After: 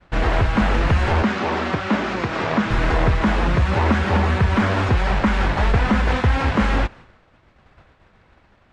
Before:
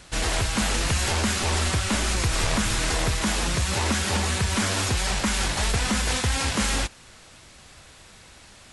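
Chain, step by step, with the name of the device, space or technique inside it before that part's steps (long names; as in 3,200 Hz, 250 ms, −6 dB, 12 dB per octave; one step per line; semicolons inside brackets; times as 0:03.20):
0:01.22–0:02.71: Chebyshev band-pass filter 200–6,300 Hz, order 2
hearing-loss simulation (low-pass filter 1,700 Hz 12 dB per octave; downward expander −43 dBFS)
level +8 dB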